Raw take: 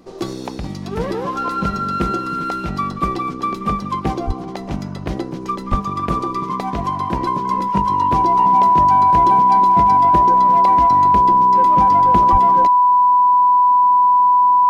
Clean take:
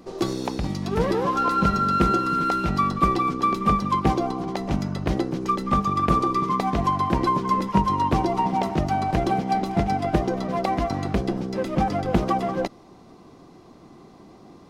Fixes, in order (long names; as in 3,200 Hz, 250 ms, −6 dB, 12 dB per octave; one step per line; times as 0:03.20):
notch filter 990 Hz, Q 30
0:04.26–0:04.38: high-pass filter 140 Hz 24 dB per octave
0:05.70–0:05.82: high-pass filter 140 Hz 24 dB per octave
0:12.31–0:12.43: high-pass filter 140 Hz 24 dB per octave